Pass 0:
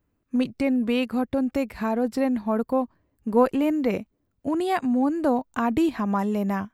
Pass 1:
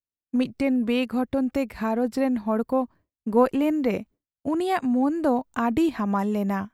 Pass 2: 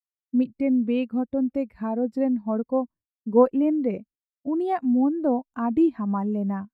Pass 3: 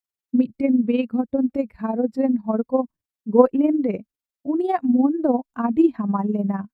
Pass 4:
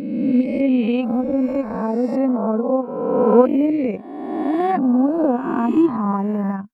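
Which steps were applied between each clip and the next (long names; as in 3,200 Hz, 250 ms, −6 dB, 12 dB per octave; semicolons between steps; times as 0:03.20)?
downward expander −43 dBFS
every bin expanded away from the loudest bin 1.5 to 1; level +1.5 dB
amplitude modulation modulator 20 Hz, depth 50%; level +6 dB
peak hold with a rise ahead of every peak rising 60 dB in 1.62 s; level −1 dB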